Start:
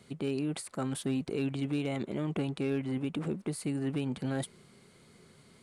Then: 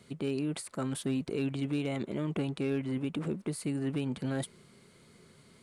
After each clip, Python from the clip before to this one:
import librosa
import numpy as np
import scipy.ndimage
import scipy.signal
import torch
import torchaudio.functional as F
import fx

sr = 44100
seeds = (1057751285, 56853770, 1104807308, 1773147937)

y = fx.notch(x, sr, hz=770.0, q=12.0)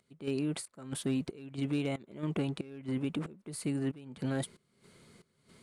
y = fx.volume_shaper(x, sr, bpm=92, per_beat=1, depth_db=-19, release_ms=271.0, shape='slow start')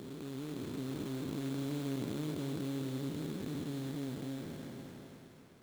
y = fx.spec_blur(x, sr, span_ms=1250.0)
y = fx.sample_hold(y, sr, seeds[0], rate_hz=3800.0, jitter_pct=20)
y = fx.echo_thinned(y, sr, ms=261, feedback_pct=56, hz=190.0, wet_db=-9)
y = F.gain(torch.from_numpy(y), 1.0).numpy()